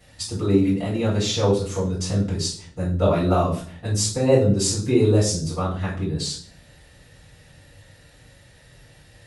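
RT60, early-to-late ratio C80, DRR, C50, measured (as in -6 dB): 0.50 s, 11.0 dB, -9.0 dB, 6.5 dB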